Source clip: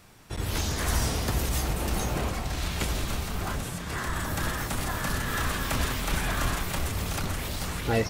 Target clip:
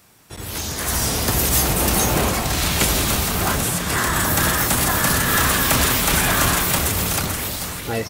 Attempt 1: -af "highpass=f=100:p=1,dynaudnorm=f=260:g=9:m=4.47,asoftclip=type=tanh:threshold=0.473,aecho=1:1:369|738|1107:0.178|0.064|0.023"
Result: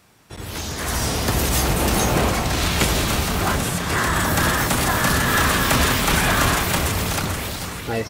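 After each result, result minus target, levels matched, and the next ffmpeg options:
echo 120 ms late; 8 kHz band -3.0 dB
-af "highpass=f=100:p=1,dynaudnorm=f=260:g=9:m=4.47,asoftclip=type=tanh:threshold=0.473,aecho=1:1:249|498|747:0.178|0.064|0.023"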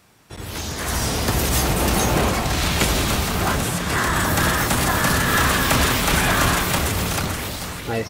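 8 kHz band -3.0 dB
-af "highpass=f=100:p=1,highshelf=f=7600:g=10,dynaudnorm=f=260:g=9:m=4.47,asoftclip=type=tanh:threshold=0.473,aecho=1:1:249|498|747:0.178|0.064|0.023"

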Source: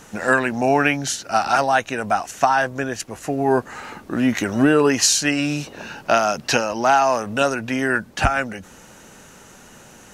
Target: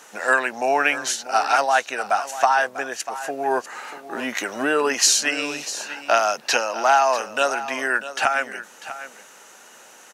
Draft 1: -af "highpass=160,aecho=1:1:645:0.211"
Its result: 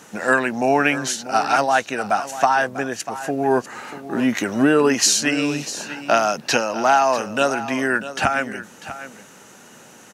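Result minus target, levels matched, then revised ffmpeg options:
125 Hz band +17.0 dB
-af "highpass=530,aecho=1:1:645:0.211"

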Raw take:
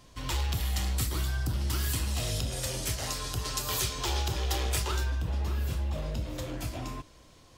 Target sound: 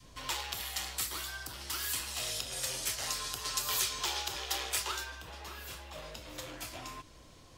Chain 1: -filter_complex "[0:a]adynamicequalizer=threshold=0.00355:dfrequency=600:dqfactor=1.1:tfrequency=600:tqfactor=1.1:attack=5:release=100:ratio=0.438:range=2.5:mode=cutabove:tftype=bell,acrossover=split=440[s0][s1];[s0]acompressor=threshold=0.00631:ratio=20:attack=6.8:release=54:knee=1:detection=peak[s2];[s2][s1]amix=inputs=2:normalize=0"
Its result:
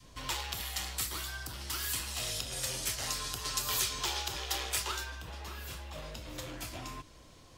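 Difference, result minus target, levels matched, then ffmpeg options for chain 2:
compression: peak gain reduction -6 dB
-filter_complex "[0:a]adynamicequalizer=threshold=0.00355:dfrequency=600:dqfactor=1.1:tfrequency=600:tqfactor=1.1:attack=5:release=100:ratio=0.438:range=2.5:mode=cutabove:tftype=bell,acrossover=split=440[s0][s1];[s0]acompressor=threshold=0.00299:ratio=20:attack=6.8:release=54:knee=1:detection=peak[s2];[s2][s1]amix=inputs=2:normalize=0"

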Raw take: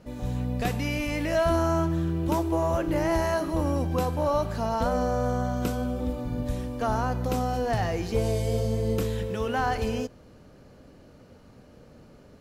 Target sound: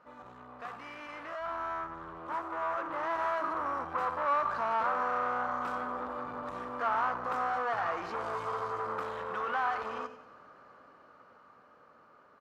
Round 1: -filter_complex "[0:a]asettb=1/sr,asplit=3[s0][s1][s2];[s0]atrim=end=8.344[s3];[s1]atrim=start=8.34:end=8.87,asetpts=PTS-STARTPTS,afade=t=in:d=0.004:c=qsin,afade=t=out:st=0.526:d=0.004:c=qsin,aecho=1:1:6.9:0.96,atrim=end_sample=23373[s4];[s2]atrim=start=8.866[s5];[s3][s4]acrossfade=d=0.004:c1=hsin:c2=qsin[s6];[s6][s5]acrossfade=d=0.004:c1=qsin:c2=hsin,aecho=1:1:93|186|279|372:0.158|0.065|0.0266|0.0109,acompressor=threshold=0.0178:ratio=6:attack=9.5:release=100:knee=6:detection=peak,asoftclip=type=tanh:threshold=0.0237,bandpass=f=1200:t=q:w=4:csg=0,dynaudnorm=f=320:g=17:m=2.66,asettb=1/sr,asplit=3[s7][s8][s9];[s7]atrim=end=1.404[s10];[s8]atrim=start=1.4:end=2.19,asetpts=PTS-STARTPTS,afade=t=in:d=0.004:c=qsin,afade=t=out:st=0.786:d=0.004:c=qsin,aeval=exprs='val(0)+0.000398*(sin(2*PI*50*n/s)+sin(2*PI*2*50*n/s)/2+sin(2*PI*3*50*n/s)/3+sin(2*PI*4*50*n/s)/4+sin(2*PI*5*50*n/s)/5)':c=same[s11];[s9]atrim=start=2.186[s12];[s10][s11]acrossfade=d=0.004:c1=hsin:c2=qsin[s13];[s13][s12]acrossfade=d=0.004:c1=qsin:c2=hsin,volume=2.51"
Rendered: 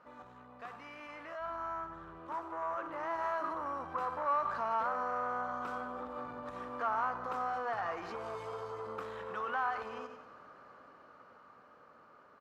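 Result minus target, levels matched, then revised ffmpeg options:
compression: peak gain reduction +8 dB
-filter_complex "[0:a]asettb=1/sr,asplit=3[s0][s1][s2];[s0]atrim=end=8.344[s3];[s1]atrim=start=8.34:end=8.87,asetpts=PTS-STARTPTS,afade=t=in:d=0.004:c=qsin,afade=t=out:st=0.526:d=0.004:c=qsin,aecho=1:1:6.9:0.96,atrim=end_sample=23373[s4];[s2]atrim=start=8.866[s5];[s3][s4]acrossfade=d=0.004:c1=hsin:c2=qsin[s6];[s6][s5]acrossfade=d=0.004:c1=qsin:c2=hsin,aecho=1:1:93|186|279|372:0.158|0.065|0.0266|0.0109,acompressor=threshold=0.0531:ratio=6:attack=9.5:release=100:knee=6:detection=peak,asoftclip=type=tanh:threshold=0.0237,bandpass=f=1200:t=q:w=4:csg=0,dynaudnorm=f=320:g=17:m=2.66,asettb=1/sr,asplit=3[s7][s8][s9];[s7]atrim=end=1.404[s10];[s8]atrim=start=1.4:end=2.19,asetpts=PTS-STARTPTS,afade=t=in:d=0.004:c=qsin,afade=t=out:st=0.786:d=0.004:c=qsin,aeval=exprs='val(0)+0.000398*(sin(2*PI*50*n/s)+sin(2*PI*2*50*n/s)/2+sin(2*PI*3*50*n/s)/3+sin(2*PI*4*50*n/s)/4+sin(2*PI*5*50*n/s)/5)':c=same[s11];[s9]atrim=start=2.186[s12];[s10][s11]acrossfade=d=0.004:c1=hsin:c2=qsin[s13];[s13][s12]acrossfade=d=0.004:c1=qsin:c2=hsin,volume=2.51"

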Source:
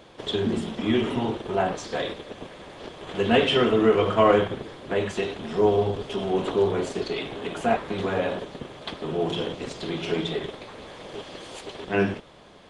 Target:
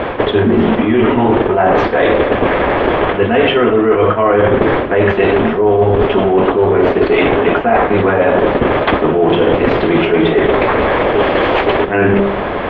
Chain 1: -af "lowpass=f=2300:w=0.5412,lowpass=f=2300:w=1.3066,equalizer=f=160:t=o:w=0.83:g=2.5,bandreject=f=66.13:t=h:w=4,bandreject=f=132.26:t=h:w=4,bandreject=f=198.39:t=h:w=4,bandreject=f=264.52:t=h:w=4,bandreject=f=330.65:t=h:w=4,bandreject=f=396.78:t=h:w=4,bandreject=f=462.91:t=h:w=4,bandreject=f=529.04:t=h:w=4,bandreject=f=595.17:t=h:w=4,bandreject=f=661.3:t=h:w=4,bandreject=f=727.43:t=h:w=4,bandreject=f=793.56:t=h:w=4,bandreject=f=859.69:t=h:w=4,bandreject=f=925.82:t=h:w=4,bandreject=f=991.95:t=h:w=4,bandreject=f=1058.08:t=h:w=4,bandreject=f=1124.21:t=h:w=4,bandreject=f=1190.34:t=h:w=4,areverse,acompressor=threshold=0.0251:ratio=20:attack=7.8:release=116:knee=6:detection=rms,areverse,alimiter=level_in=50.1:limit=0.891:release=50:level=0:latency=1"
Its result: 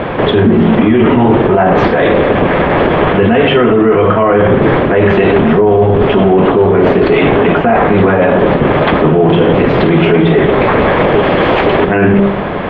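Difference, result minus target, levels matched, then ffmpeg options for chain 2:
compression: peak gain reduction -8 dB; 125 Hz band +4.0 dB
-af "lowpass=f=2300:w=0.5412,lowpass=f=2300:w=1.3066,equalizer=f=160:t=o:w=0.83:g=-7.5,bandreject=f=66.13:t=h:w=4,bandreject=f=132.26:t=h:w=4,bandreject=f=198.39:t=h:w=4,bandreject=f=264.52:t=h:w=4,bandreject=f=330.65:t=h:w=4,bandreject=f=396.78:t=h:w=4,bandreject=f=462.91:t=h:w=4,bandreject=f=529.04:t=h:w=4,bandreject=f=595.17:t=h:w=4,bandreject=f=661.3:t=h:w=4,bandreject=f=727.43:t=h:w=4,bandreject=f=793.56:t=h:w=4,bandreject=f=859.69:t=h:w=4,bandreject=f=925.82:t=h:w=4,bandreject=f=991.95:t=h:w=4,bandreject=f=1058.08:t=h:w=4,bandreject=f=1124.21:t=h:w=4,bandreject=f=1190.34:t=h:w=4,areverse,acompressor=threshold=0.00841:ratio=20:attack=7.8:release=116:knee=6:detection=rms,areverse,alimiter=level_in=50.1:limit=0.891:release=50:level=0:latency=1"

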